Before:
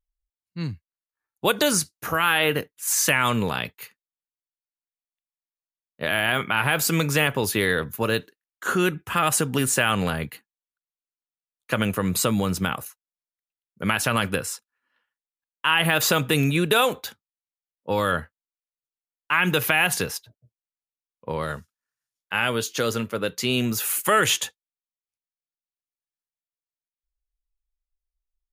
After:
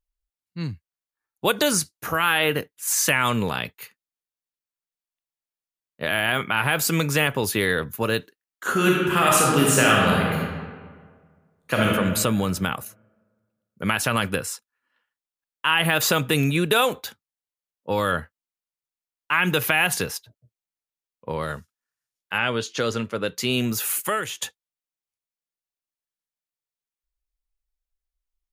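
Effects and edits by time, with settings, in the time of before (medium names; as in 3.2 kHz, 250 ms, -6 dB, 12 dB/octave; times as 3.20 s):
8.71–11.86 s: reverb throw, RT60 1.7 s, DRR -3.5 dB
22.37–23.36 s: low-pass 4.6 kHz -> 9.6 kHz
23.97–24.42 s: fade out quadratic, to -13.5 dB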